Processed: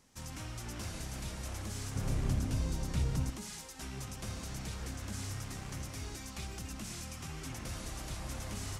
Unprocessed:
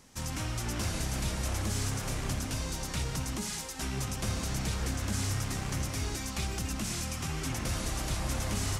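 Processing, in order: 1.96–3.3 low shelf 490 Hz +11.5 dB; gain -8.5 dB

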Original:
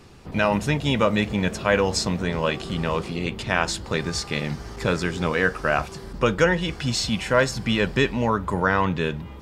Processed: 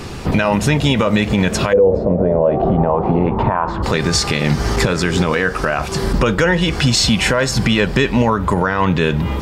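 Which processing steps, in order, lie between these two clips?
compressor 6:1, threshold -29 dBFS, peak gain reduction 15 dB; 1.72–3.82 synth low-pass 490 Hz -> 1100 Hz, resonance Q 4.9; maximiser +23.5 dB; gain -4 dB

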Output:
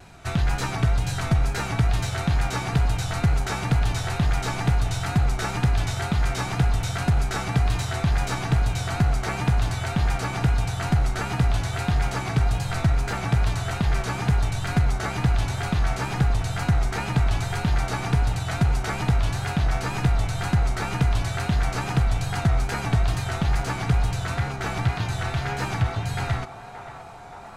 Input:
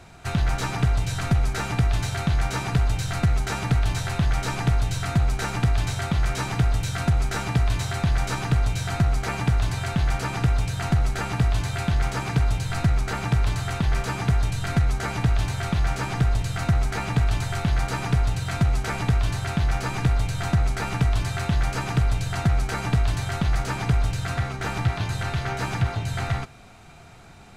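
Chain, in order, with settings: wow and flutter 72 cents; on a send: narrowing echo 0.576 s, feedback 83%, band-pass 790 Hz, level -9.5 dB

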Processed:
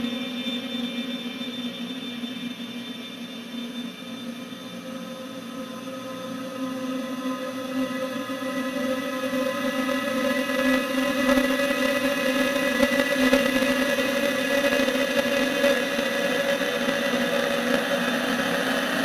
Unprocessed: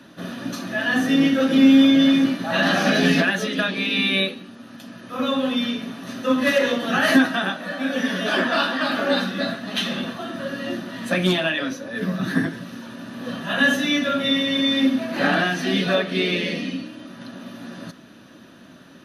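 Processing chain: Paulstretch 16×, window 1.00 s, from 5.68; high shelf 7300 Hz +9 dB; in parallel at -5.5 dB: hard clip -22 dBFS, distortion -8 dB; on the sum: added harmonics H 3 -12 dB, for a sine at -5.5 dBFS; gain +2 dB

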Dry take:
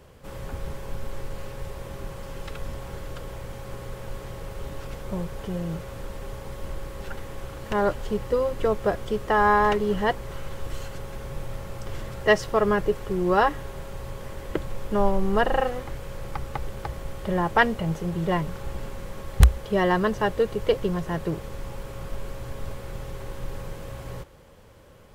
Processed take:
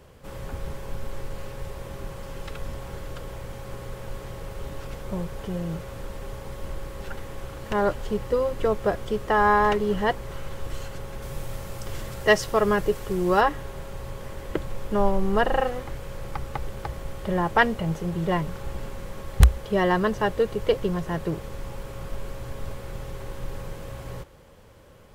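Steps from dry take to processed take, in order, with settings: 11.22–13.41 high shelf 4300 Hz +7.5 dB

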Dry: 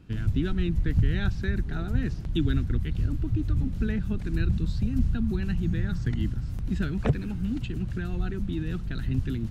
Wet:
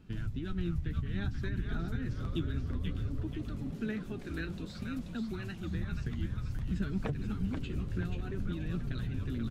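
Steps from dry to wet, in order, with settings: 3.22–5.75 HPF 260 Hz 12 dB/oct; compressor, threshold -27 dBFS, peak gain reduction 10.5 dB; flange 0.58 Hz, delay 4.4 ms, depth 9.5 ms, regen +44%; frequency-shifting echo 0.483 s, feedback 43%, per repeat -150 Hz, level -5 dB

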